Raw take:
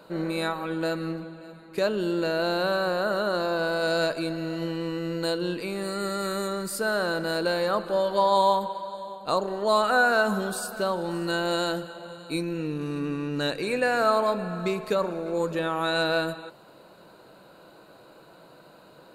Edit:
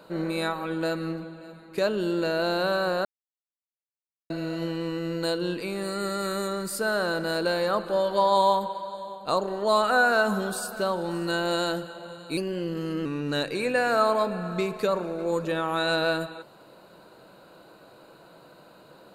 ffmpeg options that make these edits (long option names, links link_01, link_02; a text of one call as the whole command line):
ffmpeg -i in.wav -filter_complex "[0:a]asplit=5[link_01][link_02][link_03][link_04][link_05];[link_01]atrim=end=3.05,asetpts=PTS-STARTPTS,afade=type=out:start_time=3.046:duration=0.004:curve=hsin[link_06];[link_02]atrim=start=3.05:end=4.3,asetpts=PTS-STARTPTS,volume=0[link_07];[link_03]atrim=start=4.3:end=12.374,asetpts=PTS-STARTPTS,afade=type=in:duration=0.004:curve=hsin[link_08];[link_04]atrim=start=12.37:end=13.13,asetpts=PTS-STARTPTS,asetrate=48951,aresample=44100[link_09];[link_05]atrim=start=13.126[link_10];[link_06][link_07][link_08]concat=n=3:v=0:a=1[link_11];[link_11][link_09]acrossfade=duration=0.004:curve1=hsin:curve2=hsin[link_12];[link_12][link_10]acrossfade=duration=0.004:curve1=hsin:curve2=hsin" out.wav